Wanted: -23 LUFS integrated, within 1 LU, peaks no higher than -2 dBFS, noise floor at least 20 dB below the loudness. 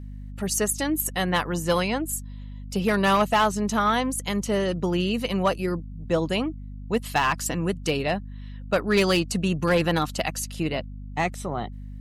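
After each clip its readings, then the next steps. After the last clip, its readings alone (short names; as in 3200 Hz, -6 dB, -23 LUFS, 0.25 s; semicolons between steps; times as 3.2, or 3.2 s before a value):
clipped 0.5%; flat tops at -14.0 dBFS; hum 50 Hz; harmonics up to 250 Hz; hum level -35 dBFS; loudness -25.0 LUFS; peak -14.0 dBFS; loudness target -23.0 LUFS
-> clip repair -14 dBFS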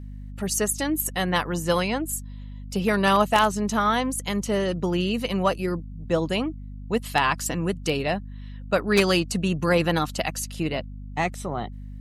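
clipped 0.0%; hum 50 Hz; harmonics up to 250 Hz; hum level -35 dBFS
-> notches 50/100/150/200/250 Hz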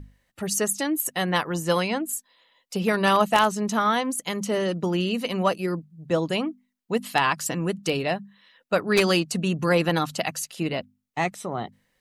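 hum none; loudness -25.0 LUFS; peak -5.0 dBFS; loudness target -23.0 LUFS
-> gain +2 dB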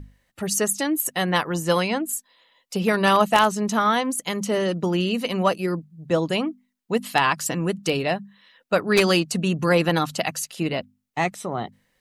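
loudness -23.0 LUFS; peak -3.0 dBFS; noise floor -71 dBFS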